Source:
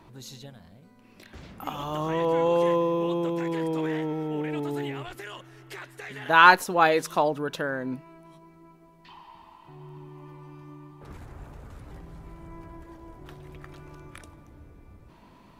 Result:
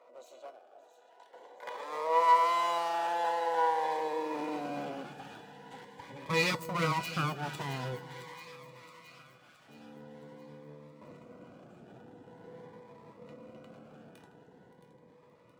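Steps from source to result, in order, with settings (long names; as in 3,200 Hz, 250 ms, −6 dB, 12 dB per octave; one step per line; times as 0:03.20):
adaptive Wiener filter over 9 samples
octave-band graphic EQ 125/500/1,000/2,000/8,000 Hz +12/+8/−9/−7/+11 dB
mid-hump overdrive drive 17 dB, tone 1,200 Hz, clips at −4 dBFS
full-wave rectification
low-shelf EQ 190 Hz −9 dB
on a send: delay that swaps between a low-pass and a high-pass 286 ms, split 900 Hz, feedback 68%, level −14 dB
on the sum: high-pass filter sweep 620 Hz → 130 Hz, 0:03.74–0:05.26
tuned comb filter 490 Hz, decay 0.21 s, harmonics all, mix 80%
delay with a high-pass on its return 670 ms, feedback 53%, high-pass 1,600 Hz, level −10.5 dB
phaser whose notches keep moving one way rising 0.45 Hz
level +4 dB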